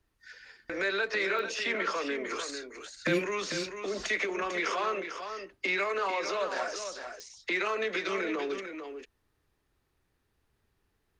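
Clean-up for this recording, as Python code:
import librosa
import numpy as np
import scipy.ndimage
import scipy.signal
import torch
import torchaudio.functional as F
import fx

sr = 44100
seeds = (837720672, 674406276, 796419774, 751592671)

y = fx.fix_declick_ar(x, sr, threshold=10.0)
y = fx.fix_echo_inverse(y, sr, delay_ms=447, level_db=-8.0)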